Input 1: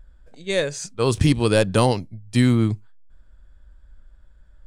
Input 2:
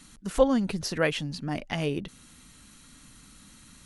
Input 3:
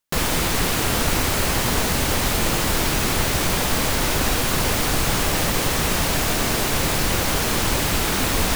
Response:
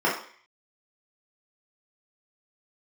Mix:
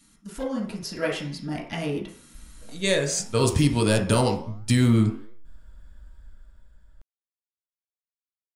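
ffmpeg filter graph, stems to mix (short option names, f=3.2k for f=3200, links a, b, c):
-filter_complex "[0:a]alimiter=limit=-13.5dB:level=0:latency=1:release=255,adelay=2350,volume=1dB,asplit=2[a][b];[b]volume=-19.5dB[c];[1:a]aeval=exprs='clip(val(0),-1,0.178)':c=same,volume=-5dB,asplit=2[d][e];[e]volume=-14.5dB[f];[3:a]atrim=start_sample=2205[g];[c][f]amix=inputs=2:normalize=0[h];[h][g]afir=irnorm=-1:irlink=0[i];[a][d][i]amix=inputs=3:normalize=0,dynaudnorm=f=170:g=11:m=7dB,flanger=delay=8:depth=6.6:regen=89:speed=1.5:shape=triangular,crystalizer=i=1:c=0"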